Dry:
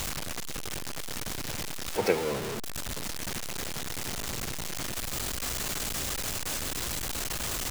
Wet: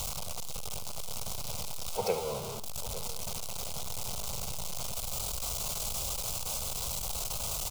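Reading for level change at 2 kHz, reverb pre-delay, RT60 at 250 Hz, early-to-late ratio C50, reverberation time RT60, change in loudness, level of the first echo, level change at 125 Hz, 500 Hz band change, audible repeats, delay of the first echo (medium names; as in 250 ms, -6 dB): -11.5 dB, no reverb, no reverb, no reverb, no reverb, -2.5 dB, -13.0 dB, -2.5 dB, -4.0 dB, 2, 73 ms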